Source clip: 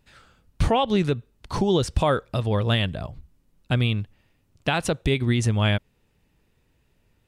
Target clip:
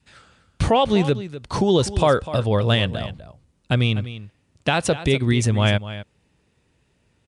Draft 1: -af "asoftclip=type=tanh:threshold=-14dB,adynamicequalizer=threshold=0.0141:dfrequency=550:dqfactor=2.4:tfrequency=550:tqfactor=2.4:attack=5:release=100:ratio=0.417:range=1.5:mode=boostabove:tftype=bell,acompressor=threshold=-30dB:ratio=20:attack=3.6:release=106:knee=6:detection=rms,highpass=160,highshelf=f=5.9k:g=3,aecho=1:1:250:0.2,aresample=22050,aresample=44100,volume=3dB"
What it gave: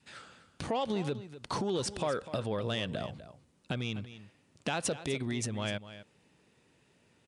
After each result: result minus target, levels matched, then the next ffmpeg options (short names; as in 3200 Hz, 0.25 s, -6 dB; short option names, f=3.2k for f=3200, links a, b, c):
compressor: peak gain reduction +14.5 dB; soft clip: distortion +13 dB; 125 Hz band -3.5 dB
-af "asoftclip=type=tanh:threshold=-14dB,adynamicequalizer=threshold=0.0141:dfrequency=550:dqfactor=2.4:tfrequency=550:tqfactor=2.4:attack=5:release=100:ratio=0.417:range=1.5:mode=boostabove:tftype=bell,highpass=160,highshelf=f=5.9k:g=3,aecho=1:1:250:0.2,aresample=22050,aresample=44100,volume=3dB"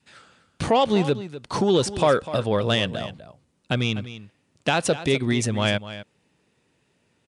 soft clip: distortion +13 dB; 125 Hz band -4.0 dB
-af "asoftclip=type=tanh:threshold=-6dB,adynamicequalizer=threshold=0.0141:dfrequency=550:dqfactor=2.4:tfrequency=550:tqfactor=2.4:attack=5:release=100:ratio=0.417:range=1.5:mode=boostabove:tftype=bell,highpass=160,highshelf=f=5.9k:g=3,aecho=1:1:250:0.2,aresample=22050,aresample=44100,volume=3dB"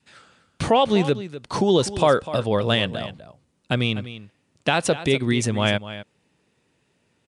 125 Hz band -4.5 dB
-af "asoftclip=type=tanh:threshold=-6dB,adynamicequalizer=threshold=0.0141:dfrequency=550:dqfactor=2.4:tfrequency=550:tqfactor=2.4:attack=5:release=100:ratio=0.417:range=1.5:mode=boostabove:tftype=bell,highpass=61,highshelf=f=5.9k:g=3,aecho=1:1:250:0.2,aresample=22050,aresample=44100,volume=3dB"